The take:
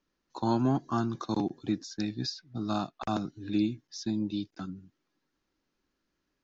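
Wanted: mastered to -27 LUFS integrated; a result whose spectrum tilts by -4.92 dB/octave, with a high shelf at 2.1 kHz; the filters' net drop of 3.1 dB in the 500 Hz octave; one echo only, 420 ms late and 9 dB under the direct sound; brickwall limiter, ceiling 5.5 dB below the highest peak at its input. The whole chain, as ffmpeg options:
-af "equalizer=f=500:t=o:g=-6,highshelf=f=2100:g=7,alimiter=limit=0.0891:level=0:latency=1,aecho=1:1:420:0.355,volume=2.11"

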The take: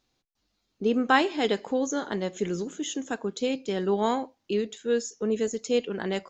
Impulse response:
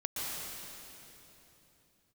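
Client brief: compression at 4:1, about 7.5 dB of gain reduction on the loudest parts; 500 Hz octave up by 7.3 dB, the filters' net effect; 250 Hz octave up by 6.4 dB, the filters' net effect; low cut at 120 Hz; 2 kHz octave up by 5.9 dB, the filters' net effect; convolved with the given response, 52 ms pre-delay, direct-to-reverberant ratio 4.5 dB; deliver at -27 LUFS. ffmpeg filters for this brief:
-filter_complex "[0:a]highpass=120,equalizer=f=250:t=o:g=6,equalizer=f=500:t=o:g=6.5,equalizer=f=2000:t=o:g=7,acompressor=threshold=0.0891:ratio=4,asplit=2[s0][s1];[1:a]atrim=start_sample=2205,adelay=52[s2];[s1][s2]afir=irnorm=-1:irlink=0,volume=0.355[s3];[s0][s3]amix=inputs=2:normalize=0,volume=0.794"

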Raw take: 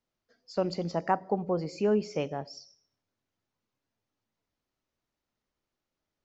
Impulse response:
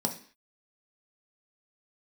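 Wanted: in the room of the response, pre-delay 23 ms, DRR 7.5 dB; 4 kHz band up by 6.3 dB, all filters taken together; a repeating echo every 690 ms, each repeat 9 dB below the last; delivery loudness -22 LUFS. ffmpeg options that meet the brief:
-filter_complex "[0:a]equalizer=f=4000:t=o:g=8.5,aecho=1:1:690|1380|2070|2760:0.355|0.124|0.0435|0.0152,asplit=2[s0][s1];[1:a]atrim=start_sample=2205,adelay=23[s2];[s1][s2]afir=irnorm=-1:irlink=0,volume=0.211[s3];[s0][s3]amix=inputs=2:normalize=0,volume=2.24"

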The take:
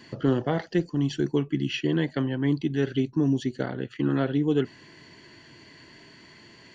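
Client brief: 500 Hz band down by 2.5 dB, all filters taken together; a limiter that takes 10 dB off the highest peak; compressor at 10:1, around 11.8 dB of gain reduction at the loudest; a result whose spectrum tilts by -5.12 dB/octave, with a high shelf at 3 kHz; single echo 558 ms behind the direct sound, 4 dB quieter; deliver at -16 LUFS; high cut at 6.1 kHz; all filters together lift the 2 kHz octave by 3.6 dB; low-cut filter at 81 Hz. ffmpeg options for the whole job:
-af "highpass=81,lowpass=6100,equalizer=f=500:t=o:g=-3.5,equalizer=f=2000:t=o:g=6,highshelf=f=3000:g=-3.5,acompressor=threshold=0.0251:ratio=10,alimiter=level_in=2.24:limit=0.0631:level=0:latency=1,volume=0.447,aecho=1:1:558:0.631,volume=16.8"

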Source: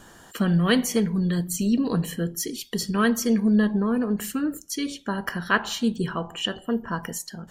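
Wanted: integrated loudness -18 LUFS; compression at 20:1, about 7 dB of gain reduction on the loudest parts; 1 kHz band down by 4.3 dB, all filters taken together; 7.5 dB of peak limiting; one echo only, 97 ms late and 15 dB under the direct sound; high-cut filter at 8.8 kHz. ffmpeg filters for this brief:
-af "lowpass=8800,equalizer=f=1000:t=o:g=-5.5,acompressor=threshold=0.0708:ratio=20,alimiter=limit=0.0841:level=0:latency=1,aecho=1:1:97:0.178,volume=4.22"

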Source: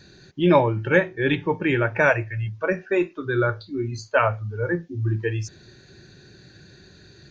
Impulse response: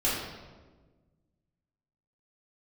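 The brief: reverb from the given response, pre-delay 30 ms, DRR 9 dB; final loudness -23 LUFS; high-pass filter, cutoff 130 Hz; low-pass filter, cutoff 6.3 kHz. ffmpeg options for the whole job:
-filter_complex "[0:a]highpass=130,lowpass=6300,asplit=2[s0][s1];[1:a]atrim=start_sample=2205,adelay=30[s2];[s1][s2]afir=irnorm=-1:irlink=0,volume=0.1[s3];[s0][s3]amix=inputs=2:normalize=0,volume=0.944"

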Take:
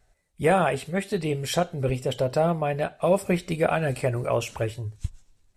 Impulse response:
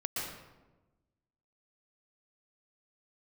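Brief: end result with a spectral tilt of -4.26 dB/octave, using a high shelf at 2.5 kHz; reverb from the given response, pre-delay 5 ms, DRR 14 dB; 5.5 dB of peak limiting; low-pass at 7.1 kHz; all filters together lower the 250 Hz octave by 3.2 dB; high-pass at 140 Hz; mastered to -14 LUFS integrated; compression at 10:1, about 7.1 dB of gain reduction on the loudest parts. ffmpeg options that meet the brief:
-filter_complex "[0:a]highpass=140,lowpass=7100,equalizer=f=250:t=o:g=-4,highshelf=f=2500:g=8,acompressor=threshold=0.0708:ratio=10,alimiter=limit=0.112:level=0:latency=1,asplit=2[s0][s1];[1:a]atrim=start_sample=2205,adelay=5[s2];[s1][s2]afir=irnorm=-1:irlink=0,volume=0.126[s3];[s0][s3]amix=inputs=2:normalize=0,volume=7.08"

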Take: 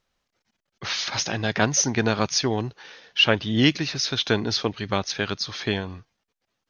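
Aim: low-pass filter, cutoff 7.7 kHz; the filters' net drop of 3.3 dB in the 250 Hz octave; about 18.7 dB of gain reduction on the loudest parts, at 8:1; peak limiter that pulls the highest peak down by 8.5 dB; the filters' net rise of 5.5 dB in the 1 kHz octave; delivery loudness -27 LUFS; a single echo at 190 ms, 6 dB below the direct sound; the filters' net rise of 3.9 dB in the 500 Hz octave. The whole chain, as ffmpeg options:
-af "lowpass=7700,equalizer=f=250:t=o:g=-6,equalizer=f=500:t=o:g=5,equalizer=f=1000:t=o:g=6,acompressor=threshold=0.0251:ratio=8,alimiter=level_in=1.06:limit=0.0631:level=0:latency=1,volume=0.944,aecho=1:1:190:0.501,volume=2.82"

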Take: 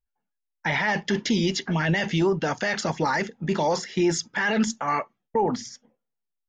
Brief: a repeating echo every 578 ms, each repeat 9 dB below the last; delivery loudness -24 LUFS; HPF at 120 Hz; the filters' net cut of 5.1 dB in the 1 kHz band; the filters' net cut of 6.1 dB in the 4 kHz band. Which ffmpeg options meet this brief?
-af "highpass=120,equalizer=f=1000:t=o:g=-6,equalizer=f=4000:t=o:g=-8.5,aecho=1:1:578|1156|1734|2312:0.355|0.124|0.0435|0.0152,volume=1.41"

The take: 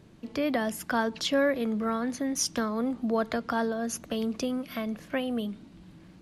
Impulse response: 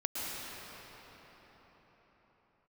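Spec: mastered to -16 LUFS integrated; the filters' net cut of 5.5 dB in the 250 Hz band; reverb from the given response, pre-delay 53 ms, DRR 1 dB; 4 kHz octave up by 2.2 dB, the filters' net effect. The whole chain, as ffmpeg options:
-filter_complex "[0:a]equalizer=f=250:t=o:g=-6,equalizer=f=4000:t=o:g=3,asplit=2[s0][s1];[1:a]atrim=start_sample=2205,adelay=53[s2];[s1][s2]afir=irnorm=-1:irlink=0,volume=0.473[s3];[s0][s3]amix=inputs=2:normalize=0,volume=4.47"

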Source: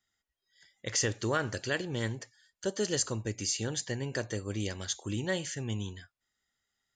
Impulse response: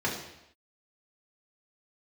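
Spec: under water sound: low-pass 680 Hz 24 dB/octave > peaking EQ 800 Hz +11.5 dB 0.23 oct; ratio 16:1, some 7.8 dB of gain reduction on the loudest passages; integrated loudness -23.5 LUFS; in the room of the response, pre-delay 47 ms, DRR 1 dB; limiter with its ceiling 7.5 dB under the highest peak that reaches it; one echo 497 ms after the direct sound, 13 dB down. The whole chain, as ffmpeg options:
-filter_complex "[0:a]acompressor=threshold=0.0224:ratio=16,alimiter=level_in=2:limit=0.0631:level=0:latency=1,volume=0.501,aecho=1:1:497:0.224,asplit=2[s0][s1];[1:a]atrim=start_sample=2205,adelay=47[s2];[s1][s2]afir=irnorm=-1:irlink=0,volume=0.282[s3];[s0][s3]amix=inputs=2:normalize=0,lowpass=f=680:w=0.5412,lowpass=f=680:w=1.3066,equalizer=f=800:t=o:w=0.23:g=11.5,volume=5.96"

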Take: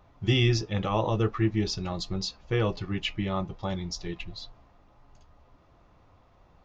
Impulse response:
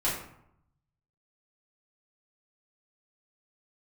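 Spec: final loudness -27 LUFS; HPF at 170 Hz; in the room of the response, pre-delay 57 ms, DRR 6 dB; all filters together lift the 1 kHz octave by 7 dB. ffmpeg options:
-filter_complex "[0:a]highpass=170,equalizer=f=1000:t=o:g=8.5,asplit=2[s0][s1];[1:a]atrim=start_sample=2205,adelay=57[s2];[s1][s2]afir=irnorm=-1:irlink=0,volume=0.178[s3];[s0][s3]amix=inputs=2:normalize=0,volume=1.06"

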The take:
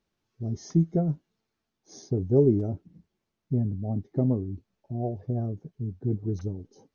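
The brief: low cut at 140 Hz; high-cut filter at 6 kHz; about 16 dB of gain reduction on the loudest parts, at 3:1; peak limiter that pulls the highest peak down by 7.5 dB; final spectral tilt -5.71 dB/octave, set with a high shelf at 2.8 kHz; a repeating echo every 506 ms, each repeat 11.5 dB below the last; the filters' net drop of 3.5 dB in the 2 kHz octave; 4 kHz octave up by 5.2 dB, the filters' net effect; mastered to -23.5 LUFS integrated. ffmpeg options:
-af "highpass=140,lowpass=6000,equalizer=f=2000:t=o:g=-7.5,highshelf=f=2800:g=5,equalizer=f=4000:t=o:g=5.5,acompressor=threshold=0.0112:ratio=3,alimiter=level_in=2.66:limit=0.0631:level=0:latency=1,volume=0.376,aecho=1:1:506|1012|1518:0.266|0.0718|0.0194,volume=11.2"

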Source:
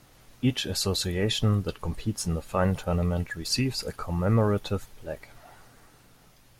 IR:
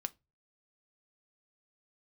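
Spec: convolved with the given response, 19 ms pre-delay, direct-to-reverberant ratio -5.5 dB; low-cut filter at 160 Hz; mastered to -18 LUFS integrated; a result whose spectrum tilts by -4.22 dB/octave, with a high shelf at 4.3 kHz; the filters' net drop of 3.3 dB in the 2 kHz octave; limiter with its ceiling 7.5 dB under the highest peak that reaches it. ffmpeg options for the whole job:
-filter_complex "[0:a]highpass=160,equalizer=f=2000:t=o:g=-5.5,highshelf=f=4300:g=4.5,alimiter=limit=0.119:level=0:latency=1,asplit=2[s0][s1];[1:a]atrim=start_sample=2205,adelay=19[s2];[s1][s2]afir=irnorm=-1:irlink=0,volume=2.11[s3];[s0][s3]amix=inputs=2:normalize=0,volume=2"

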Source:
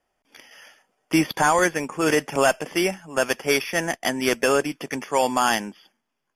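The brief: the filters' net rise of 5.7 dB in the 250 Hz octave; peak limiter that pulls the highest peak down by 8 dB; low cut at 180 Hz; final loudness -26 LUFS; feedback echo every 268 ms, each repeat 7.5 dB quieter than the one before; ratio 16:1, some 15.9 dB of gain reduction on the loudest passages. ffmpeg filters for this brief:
-af "highpass=180,equalizer=f=250:t=o:g=8.5,acompressor=threshold=0.0501:ratio=16,alimiter=limit=0.0841:level=0:latency=1,aecho=1:1:268|536|804|1072|1340:0.422|0.177|0.0744|0.0312|0.0131,volume=2.11"

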